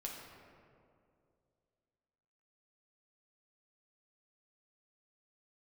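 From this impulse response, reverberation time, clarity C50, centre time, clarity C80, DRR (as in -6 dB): 2.4 s, 1.5 dB, 86 ms, 3.0 dB, -2.0 dB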